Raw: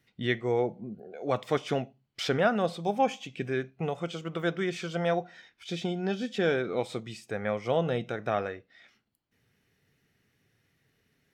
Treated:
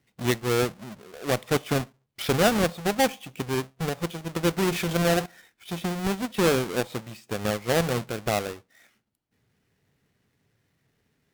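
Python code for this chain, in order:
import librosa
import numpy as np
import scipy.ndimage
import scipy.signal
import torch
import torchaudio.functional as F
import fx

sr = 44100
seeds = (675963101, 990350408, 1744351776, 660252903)

y = fx.halfwave_hold(x, sr)
y = fx.cheby_harmonics(y, sr, harmonics=(7,), levels_db=(-25,), full_scale_db=-13.0)
y = fx.env_flatten(y, sr, amount_pct=50, at=(4.57, 5.26))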